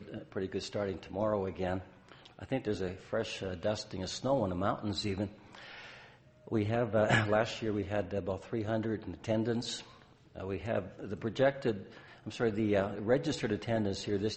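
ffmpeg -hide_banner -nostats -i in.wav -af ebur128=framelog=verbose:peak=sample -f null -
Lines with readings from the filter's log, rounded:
Integrated loudness:
  I:         -34.1 LUFS
  Threshold: -44.7 LUFS
Loudness range:
  LRA:         3.9 LU
  Threshold: -54.7 LUFS
  LRA low:   -36.8 LUFS
  LRA high:  -32.9 LUFS
Sample peak:
  Peak:      -12.1 dBFS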